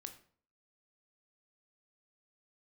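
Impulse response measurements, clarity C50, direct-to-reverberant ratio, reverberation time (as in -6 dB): 12.0 dB, 6.5 dB, 0.50 s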